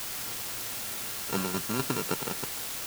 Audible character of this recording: a buzz of ramps at a fixed pitch in blocks of 32 samples; tremolo saw down 3.9 Hz, depth 60%; a quantiser's noise floor 6-bit, dither triangular

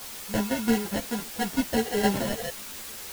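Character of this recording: aliases and images of a low sample rate 1.2 kHz, jitter 0%; tremolo saw down 5.9 Hz, depth 70%; a quantiser's noise floor 6-bit, dither triangular; a shimmering, thickened sound

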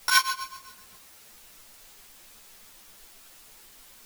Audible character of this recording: a buzz of ramps at a fixed pitch in blocks of 8 samples; tremolo triangle 7.7 Hz, depth 100%; a quantiser's noise floor 10-bit, dither triangular; a shimmering, thickened sound

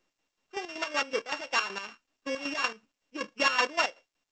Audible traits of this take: a buzz of ramps at a fixed pitch in blocks of 16 samples; chopped level 5.3 Hz, depth 65%, duty 45%; µ-law

